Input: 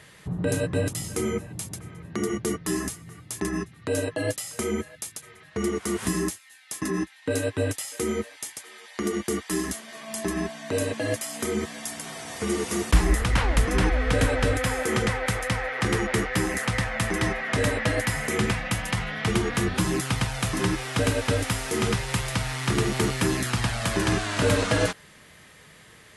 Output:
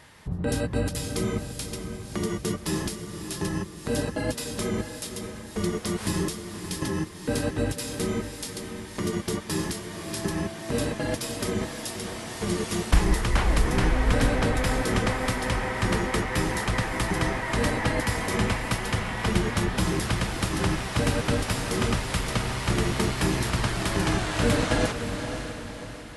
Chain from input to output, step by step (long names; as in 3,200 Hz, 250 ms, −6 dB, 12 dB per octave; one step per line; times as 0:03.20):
pitch-shifted copies added −12 semitones −2 dB
feedback delay with all-pass diffusion 568 ms, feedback 46%, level −8 dB
level −3 dB